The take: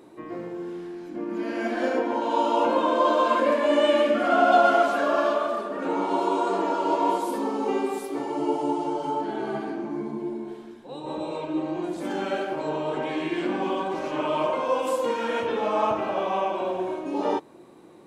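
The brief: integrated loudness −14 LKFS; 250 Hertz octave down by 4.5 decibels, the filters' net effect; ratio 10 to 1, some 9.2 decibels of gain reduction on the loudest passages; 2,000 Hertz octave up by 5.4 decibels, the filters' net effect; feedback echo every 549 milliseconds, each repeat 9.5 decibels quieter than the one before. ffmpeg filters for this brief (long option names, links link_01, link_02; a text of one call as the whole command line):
ffmpeg -i in.wav -af "equalizer=frequency=250:width_type=o:gain=-6.5,equalizer=frequency=2000:width_type=o:gain=8,acompressor=threshold=-22dB:ratio=10,aecho=1:1:549|1098|1647|2196:0.335|0.111|0.0365|0.012,volume=13.5dB" out.wav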